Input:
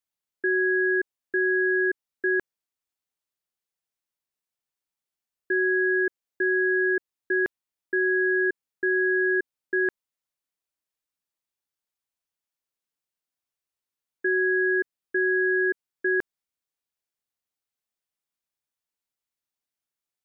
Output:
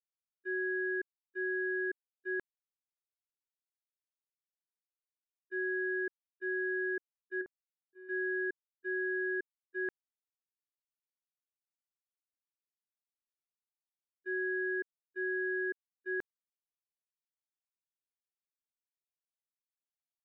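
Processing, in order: 7.41–8.09 LPF 1200 Hz 12 dB/oct; gate -22 dBFS, range -42 dB; gain -7.5 dB

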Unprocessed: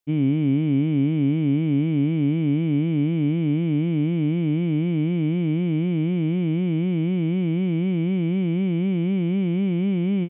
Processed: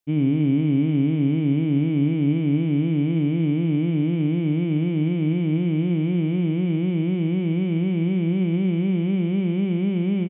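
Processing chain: echo 84 ms -10 dB

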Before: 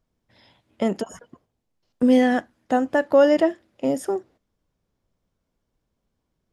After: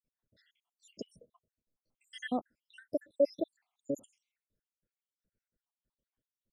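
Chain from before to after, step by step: random spectral dropouts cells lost 83%; gain -9 dB

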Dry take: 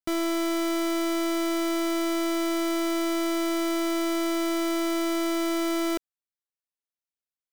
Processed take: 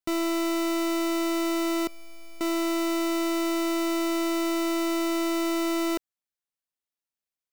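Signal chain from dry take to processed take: tracing distortion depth 0.36 ms; 1.87–2.41 resonator 590 Hz, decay 0.16 s, harmonics all, mix 100%

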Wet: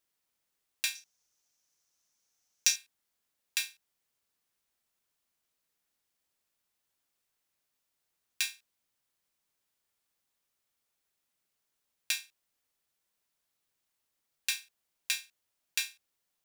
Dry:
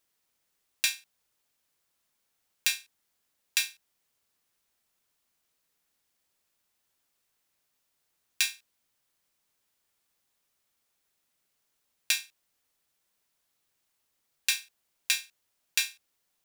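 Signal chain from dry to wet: 0.95–2.76 bell 6000 Hz +14.5 dB 0.51 oct; gain -5 dB

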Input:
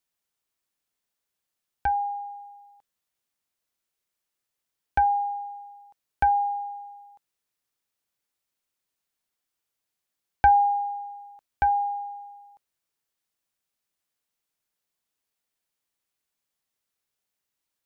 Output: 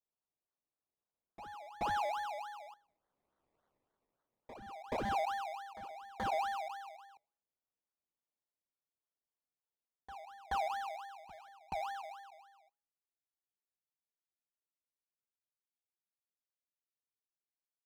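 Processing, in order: Doppler pass-by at 3.59, 8 m/s, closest 2.6 m; steep low-pass 2100 Hz 48 dB/oct; bell 680 Hz +3 dB 2.7 oct; de-hum 137 Hz, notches 7; in parallel at -1.5 dB: compressor, threshold -48 dBFS, peak gain reduction 18.5 dB; on the sum: decimation with a swept rate 24×, swing 60% 3.5 Hz; wavefolder -34 dBFS; overdrive pedal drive 3 dB, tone 1200 Hz, clips at -34 dBFS; reverse echo 0.428 s -14.5 dB; Doppler distortion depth 0.11 ms; gain +7.5 dB

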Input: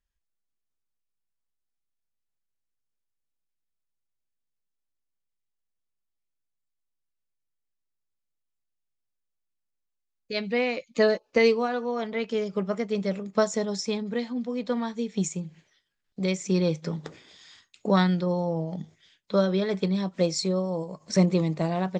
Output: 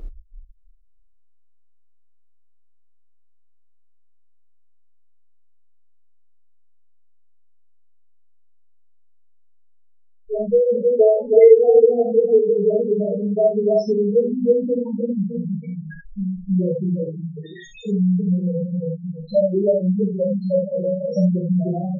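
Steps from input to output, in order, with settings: zero-crossing step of -26 dBFS; air absorption 110 m; feedback echo 0.317 s, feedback 22%, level -3 dB; in parallel at +1 dB: upward compressor, threshold -23 dBFS; on the sum: LFO low-pass saw up 6 Hz 570–7500 Hz; loudest bins only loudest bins 2; bell 400 Hz +11.5 dB 1.7 oct; non-linear reverb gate 0.1 s flat, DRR 0.5 dB; spectral delete 17.73–19.34, 530–2300 Hz; gain -11 dB

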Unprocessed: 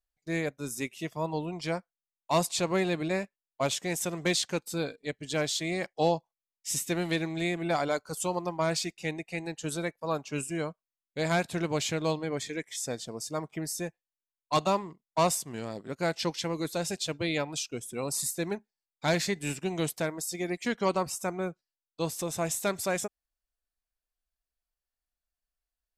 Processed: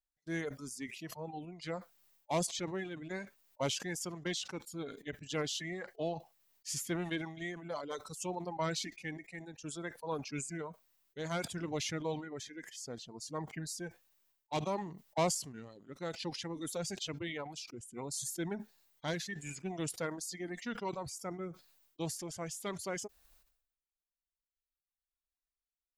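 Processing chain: reverb removal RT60 1.9 s; tremolo triangle 0.61 Hz, depth 50%; formant shift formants -2 st; sustainer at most 76 dB/s; gain -5.5 dB

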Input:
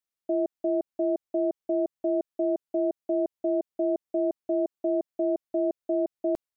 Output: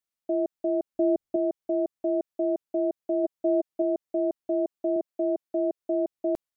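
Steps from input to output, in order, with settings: 0.94–1.36 low shelf 270 Hz +10.5 dB; 3.23–3.82 comb 6.3 ms, depth 38%; 4.96–5.79 HPF 160 Hz

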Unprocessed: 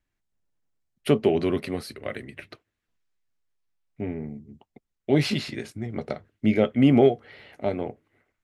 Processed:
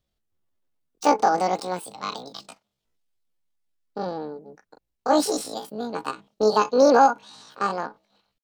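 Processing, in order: pitch shift +12 st; gain +1.5 dB

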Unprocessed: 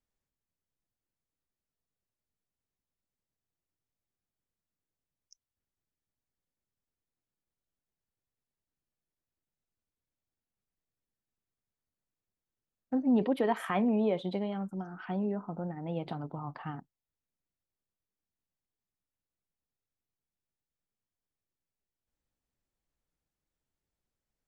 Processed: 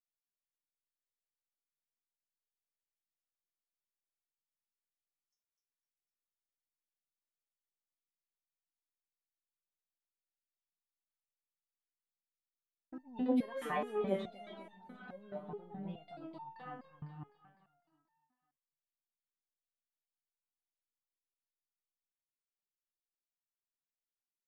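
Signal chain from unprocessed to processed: gate with hold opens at -38 dBFS; 14.62–15.88 high shelf 2200 Hz -12 dB; feedback echo 0.252 s, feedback 57%, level -8.5 dB; stepped resonator 4.7 Hz 150–900 Hz; gain +6.5 dB

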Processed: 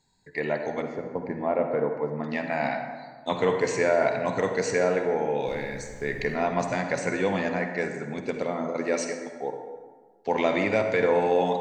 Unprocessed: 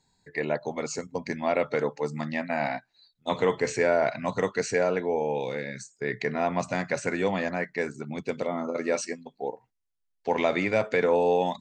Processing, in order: 0.82–2.24 LPF 1200 Hz 12 dB/oct; 5.46–6.35 added noise brown -44 dBFS; reverb RT60 1.6 s, pre-delay 42 ms, DRR 5 dB

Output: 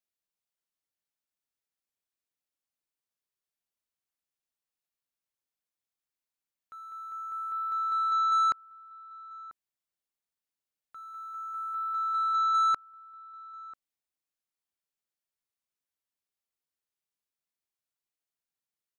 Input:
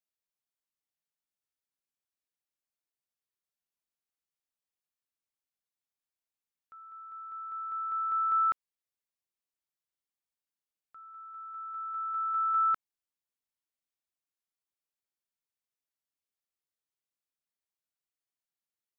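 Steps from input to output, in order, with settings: 7.96–8.49 notches 60/120/180/240 Hz; sample leveller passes 1; outdoor echo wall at 170 m, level -18 dB; gain +1.5 dB

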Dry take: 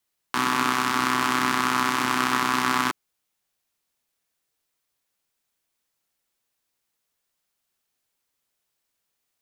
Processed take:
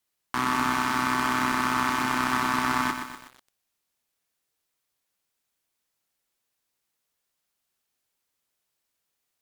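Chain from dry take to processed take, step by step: tube stage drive 11 dB, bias 0.4; lo-fi delay 0.123 s, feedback 55%, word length 7-bit, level -7 dB

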